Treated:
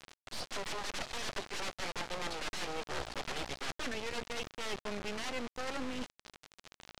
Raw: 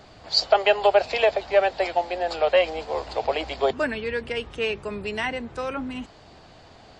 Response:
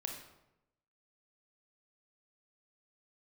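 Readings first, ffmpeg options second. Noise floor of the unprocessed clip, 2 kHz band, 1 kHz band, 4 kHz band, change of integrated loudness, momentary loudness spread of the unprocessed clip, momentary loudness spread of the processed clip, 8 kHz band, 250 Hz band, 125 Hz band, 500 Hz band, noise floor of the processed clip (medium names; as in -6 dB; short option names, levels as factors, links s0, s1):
-50 dBFS, -12.0 dB, -16.0 dB, -11.5 dB, -15.5 dB, 11 LU, 7 LU, no reading, -9.5 dB, -8.0 dB, -21.0 dB, under -85 dBFS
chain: -af "aeval=exprs='(mod(11.2*val(0)+1,2)-1)/11.2':c=same,equalizer=f=82:w=0.33:g=-2.5,areverse,acompressor=threshold=0.0158:ratio=5,areverse,acrusher=bits=4:dc=4:mix=0:aa=0.000001,lowpass=6200,volume=1.41"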